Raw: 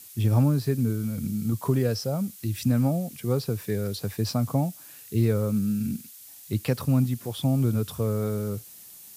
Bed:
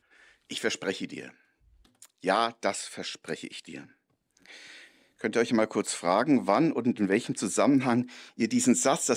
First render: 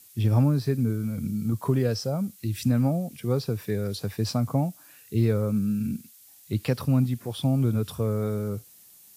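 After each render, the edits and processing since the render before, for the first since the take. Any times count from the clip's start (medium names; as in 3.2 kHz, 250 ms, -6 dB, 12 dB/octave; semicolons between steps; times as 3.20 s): noise print and reduce 6 dB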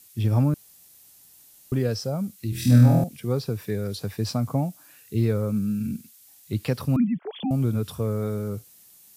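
0.54–1.72 s: room tone; 2.50–3.04 s: flutter echo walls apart 4.2 m, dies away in 0.83 s; 6.96–7.51 s: formants replaced by sine waves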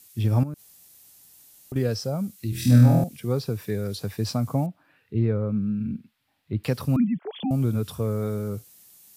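0.43–1.76 s: compression 4:1, threshold -32 dBFS; 4.66–6.64 s: distance through air 430 m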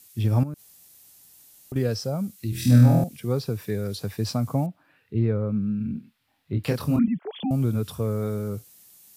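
5.94–7.08 s: doubling 26 ms -4 dB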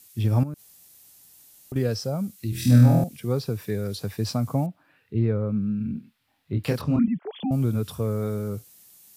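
6.81–7.52 s: distance through air 120 m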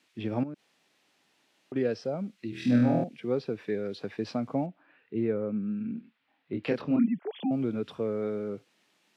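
Chebyshev band-pass 280–2600 Hz, order 2; dynamic bell 1.1 kHz, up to -6 dB, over -50 dBFS, Q 2.1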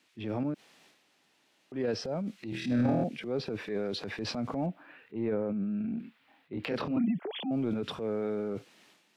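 compression 1.5:1, threshold -30 dBFS, peak gain reduction 4.5 dB; transient shaper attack -7 dB, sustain +9 dB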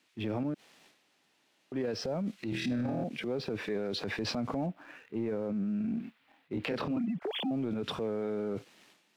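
compression 10:1, threshold -33 dBFS, peak gain reduction 11 dB; waveshaping leveller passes 1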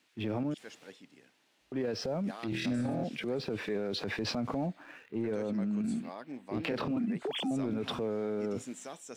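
add bed -20.5 dB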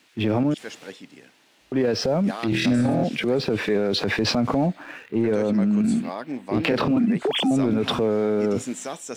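trim +12 dB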